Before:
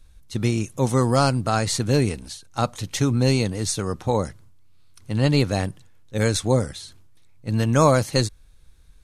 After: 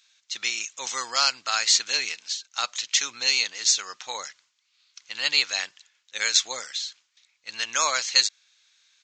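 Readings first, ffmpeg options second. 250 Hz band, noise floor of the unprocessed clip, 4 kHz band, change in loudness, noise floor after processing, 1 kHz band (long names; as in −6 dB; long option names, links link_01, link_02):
−30.0 dB, −49 dBFS, +8.5 dB, −1.5 dB, −72 dBFS, −5.5 dB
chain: -af "asuperpass=centerf=5100:order=4:qfactor=0.58,aresample=16000,aresample=44100,volume=8.5dB"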